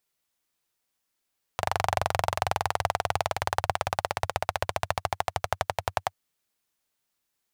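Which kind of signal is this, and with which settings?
single-cylinder engine model, changing speed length 4.55 s, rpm 2900, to 1200, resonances 94/730 Hz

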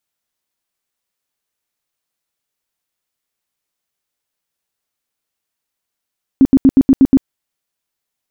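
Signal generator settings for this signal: tone bursts 268 Hz, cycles 11, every 0.12 s, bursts 7, -3.5 dBFS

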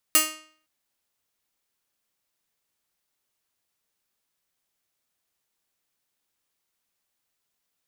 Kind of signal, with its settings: plucked string D#4, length 0.51 s, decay 0.53 s, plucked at 0.39, bright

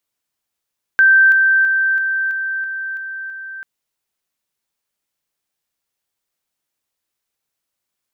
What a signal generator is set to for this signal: level ladder 1.56 kHz -7 dBFS, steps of -3 dB, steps 8, 0.33 s 0.00 s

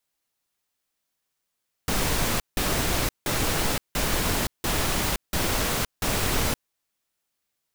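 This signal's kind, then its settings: noise bursts pink, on 0.52 s, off 0.17 s, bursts 7, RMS -24.5 dBFS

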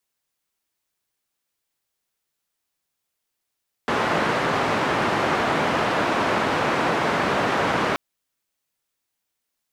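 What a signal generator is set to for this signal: noise band 130–1300 Hz, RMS -22 dBFS 4.08 s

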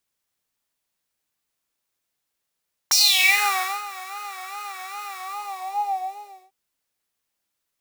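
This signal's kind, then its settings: synth patch with vibrato G5, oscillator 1 triangle, oscillator 2 square, interval 0 st, sub -7.5 dB, noise -11 dB, filter highpass, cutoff 510 Hz, Q 6.2, filter envelope 3.5 oct, filter decay 0.57 s, attack 9.2 ms, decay 0.91 s, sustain -21 dB, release 1.38 s, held 2.22 s, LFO 2.5 Hz, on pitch 94 cents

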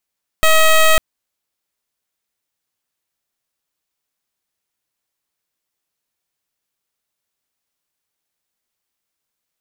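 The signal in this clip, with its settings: pulse 636 Hz, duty 12% -10 dBFS 0.55 s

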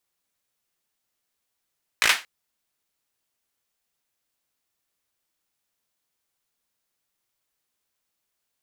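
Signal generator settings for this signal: hand clap length 0.23 s, bursts 5, apart 18 ms, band 2 kHz, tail 0.25 s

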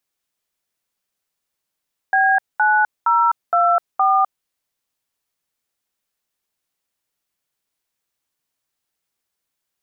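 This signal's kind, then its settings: DTMF "B9024", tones 254 ms, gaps 212 ms, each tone -15 dBFS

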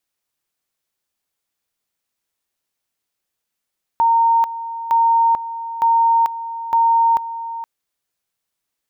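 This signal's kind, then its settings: two-level tone 920 Hz -11 dBFS, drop 13.5 dB, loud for 0.44 s, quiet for 0.47 s, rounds 4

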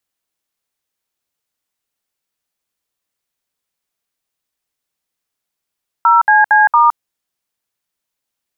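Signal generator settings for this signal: DTMF "0CC*", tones 165 ms, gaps 64 ms, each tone -9 dBFS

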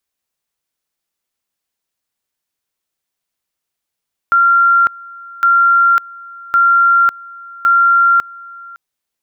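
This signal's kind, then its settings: two-level tone 1.38 kHz -7 dBFS, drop 23.5 dB, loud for 0.55 s, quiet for 0.56 s, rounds 4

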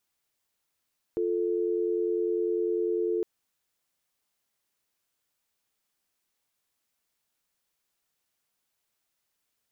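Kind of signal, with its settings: call progress tone dial tone, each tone -27.5 dBFS 2.06 s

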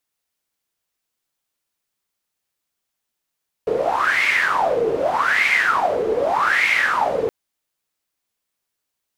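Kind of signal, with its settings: wind-like swept noise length 3.62 s, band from 440 Hz, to 2.2 kHz, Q 9.8, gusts 3, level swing 3 dB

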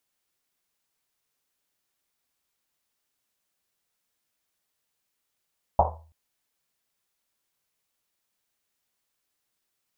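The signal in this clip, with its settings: Risset drum length 0.33 s, pitch 80 Hz, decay 0.57 s, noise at 760 Hz, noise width 490 Hz, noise 65%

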